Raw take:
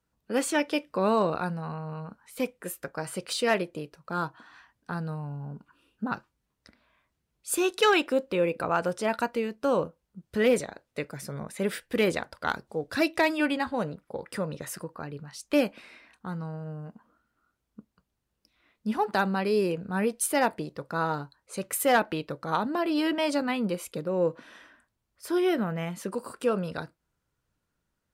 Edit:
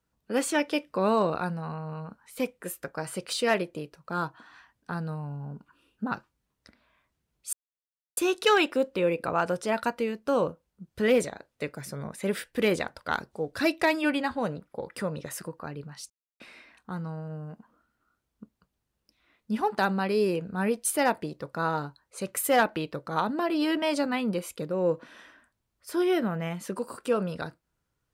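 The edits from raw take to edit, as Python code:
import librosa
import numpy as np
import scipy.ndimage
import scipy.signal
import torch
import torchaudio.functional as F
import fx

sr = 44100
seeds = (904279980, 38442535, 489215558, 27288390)

y = fx.edit(x, sr, fx.insert_silence(at_s=7.53, length_s=0.64),
    fx.silence(start_s=15.46, length_s=0.3), tone=tone)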